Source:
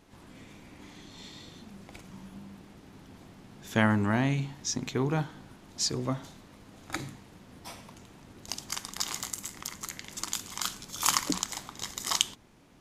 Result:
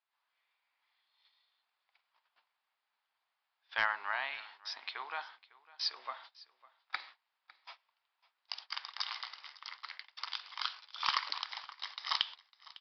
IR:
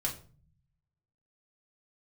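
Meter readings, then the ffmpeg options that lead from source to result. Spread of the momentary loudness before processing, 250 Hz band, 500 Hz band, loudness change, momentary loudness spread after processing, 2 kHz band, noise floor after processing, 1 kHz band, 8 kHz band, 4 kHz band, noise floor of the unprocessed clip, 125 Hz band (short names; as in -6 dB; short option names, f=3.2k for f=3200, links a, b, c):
23 LU, under -35 dB, -17.5 dB, -7.5 dB, 21 LU, -2.0 dB, under -85 dBFS, -3.5 dB, -27.5 dB, -3.5 dB, -55 dBFS, under -40 dB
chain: -af "agate=range=-23dB:threshold=-42dB:ratio=16:detection=peak,highpass=f=880:w=0.5412,highpass=f=880:w=1.3066,aresample=11025,asoftclip=type=hard:threshold=-16dB,aresample=44100,aecho=1:1:553:0.0891,volume=-1.5dB"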